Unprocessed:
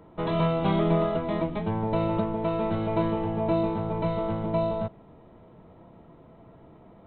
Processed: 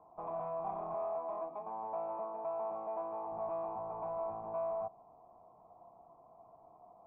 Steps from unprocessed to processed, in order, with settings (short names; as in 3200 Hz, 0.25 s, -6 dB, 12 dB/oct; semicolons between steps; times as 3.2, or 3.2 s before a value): 0.94–3.32 HPF 270 Hz 12 dB/oct; tube stage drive 30 dB, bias 0.35; vocal tract filter a; gain +7 dB